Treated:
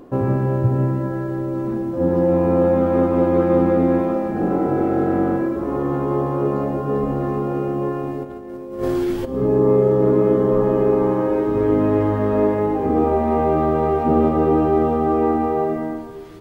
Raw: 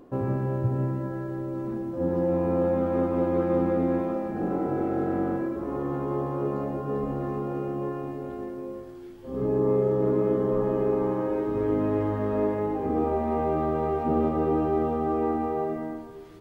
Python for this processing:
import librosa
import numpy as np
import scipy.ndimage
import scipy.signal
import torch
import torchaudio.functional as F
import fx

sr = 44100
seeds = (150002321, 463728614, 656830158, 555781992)

y = fx.over_compress(x, sr, threshold_db=-42.0, ratio=-0.5, at=(8.23, 9.24), fade=0.02)
y = y * librosa.db_to_amplitude(8.0)